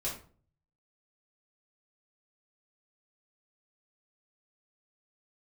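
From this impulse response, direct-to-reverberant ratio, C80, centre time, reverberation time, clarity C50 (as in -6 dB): -7.0 dB, 11.5 dB, 30 ms, 0.45 s, 6.5 dB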